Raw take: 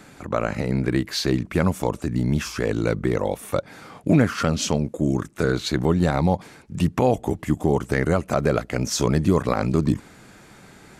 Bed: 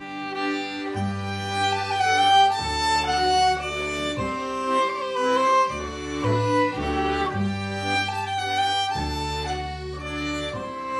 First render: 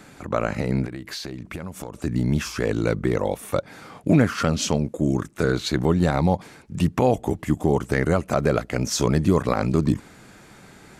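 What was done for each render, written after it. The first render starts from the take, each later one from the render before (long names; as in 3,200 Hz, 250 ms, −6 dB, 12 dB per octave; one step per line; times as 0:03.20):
0:00.85–0:02.02: downward compressor 8 to 1, threshold −29 dBFS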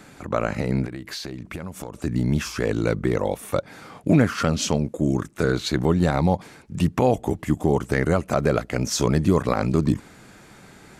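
no processing that can be heard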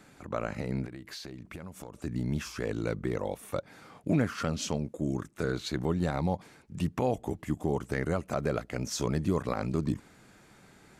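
level −9.5 dB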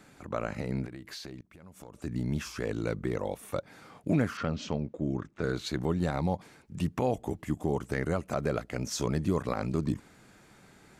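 0:01.41–0:02.13: fade in, from −20 dB
0:04.37–0:05.44: high-frequency loss of the air 160 metres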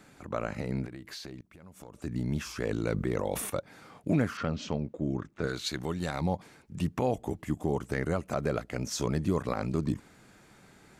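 0:02.46–0:03.50: level that may fall only so fast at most 32 dB per second
0:05.47–0:06.21: tilt shelving filter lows −5 dB, about 1,300 Hz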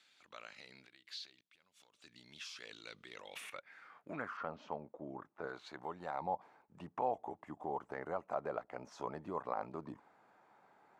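band-pass filter sweep 3,600 Hz → 860 Hz, 0:03.07–0:04.52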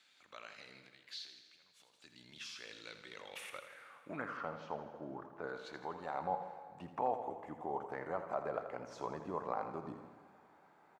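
on a send: repeating echo 82 ms, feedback 57%, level −10.5 dB
on the sum: dense smooth reverb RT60 2.2 s, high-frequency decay 0.95×, DRR 11 dB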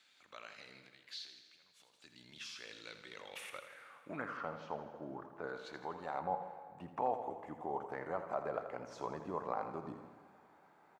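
0:06.20–0:06.97: parametric band 5,300 Hz −6.5 dB 1.6 octaves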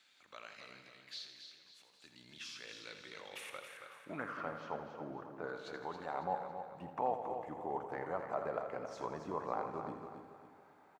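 repeating echo 275 ms, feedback 38%, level −8 dB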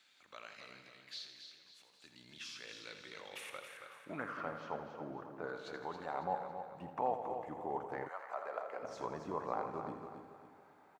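0:08.07–0:08.82: high-pass filter 1,200 Hz → 430 Hz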